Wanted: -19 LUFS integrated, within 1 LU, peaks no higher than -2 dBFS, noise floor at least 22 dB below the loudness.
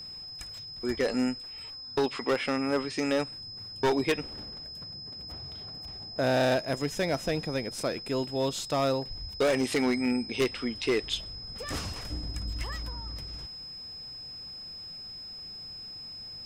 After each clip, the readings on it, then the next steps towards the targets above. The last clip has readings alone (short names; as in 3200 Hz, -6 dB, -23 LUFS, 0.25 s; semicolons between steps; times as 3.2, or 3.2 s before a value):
clipped 1.0%; flat tops at -20.5 dBFS; steady tone 5100 Hz; tone level -40 dBFS; loudness -31.5 LUFS; peak -20.5 dBFS; loudness target -19.0 LUFS
-> clip repair -20.5 dBFS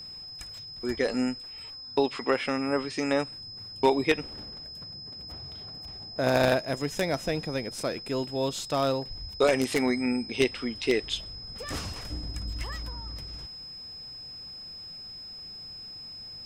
clipped 0.0%; steady tone 5100 Hz; tone level -40 dBFS
-> notch 5100 Hz, Q 30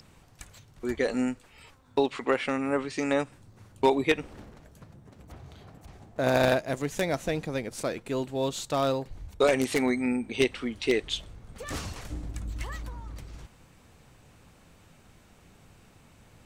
steady tone none; loudness -29.0 LUFS; peak -11.0 dBFS; loudness target -19.0 LUFS
-> gain +10 dB; limiter -2 dBFS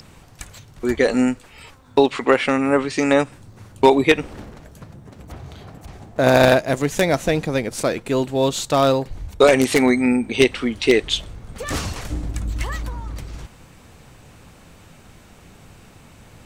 loudness -19.0 LUFS; peak -2.0 dBFS; noise floor -48 dBFS